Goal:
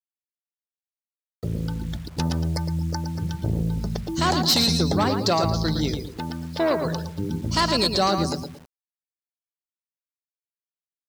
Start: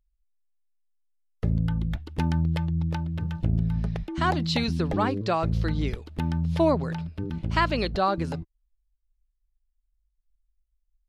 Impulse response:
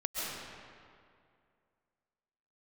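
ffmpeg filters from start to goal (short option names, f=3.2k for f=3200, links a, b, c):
-filter_complex "[0:a]highshelf=f=3.6k:t=q:w=1.5:g=13,asoftclip=type=hard:threshold=-20dB,highpass=86,dynaudnorm=f=320:g=13:m=4.5dB,asettb=1/sr,asplit=3[a][b][c];[a]atrim=end=2.534[d];[b]atrim=start=2.53:end=3.27,asetpts=PTS-STARTPTS,afade=t=in:d=0.004:c=qsin,afade=t=out:st=0.736:d=0.004:c=qsin,asuperstop=centerf=3100:order=12:qfactor=1.5[e];[c]atrim=start=3.266[f];[d][e]acrossfade=d=0.004:c1=hsin:c2=qsin[g];[g][f]acrossfade=d=0.004:c1=qsin:c2=hsin,asettb=1/sr,asplit=3[h][i][j];[h]atrim=end=6.044[k];[i]atrim=start=6.04:end=6.85,asetpts=PTS-STARTPTS,afade=t=in:d=0.004:c=qsin,afade=t=out:st=0.806:d=0.004:c=qsin,bass=f=250:g=-11,treble=f=4k:g=-9[l];[j]atrim=start=6.846[m];[k][l]acrossfade=d=0.004:c1=hsin:c2=qsin[n];[n][m]acrossfade=d=0.004:c1=qsin:c2=hsin,aecho=1:1:113|226|339|452:0.447|0.165|0.0612|0.0226,afftdn=nr=30:nf=-39,acrusher=bits=7:mix=0:aa=0.000001"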